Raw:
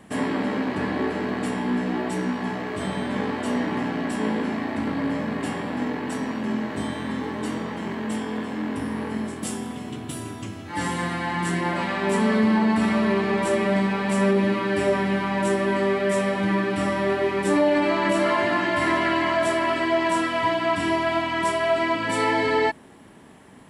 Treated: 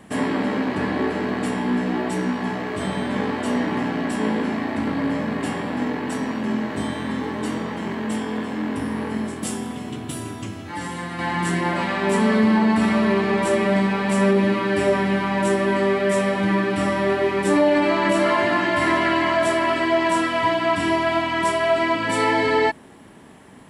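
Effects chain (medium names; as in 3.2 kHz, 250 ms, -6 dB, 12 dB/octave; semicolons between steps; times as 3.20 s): 10.68–11.19 s: compression 2.5:1, threshold -32 dBFS, peak gain reduction 6.5 dB; trim +2.5 dB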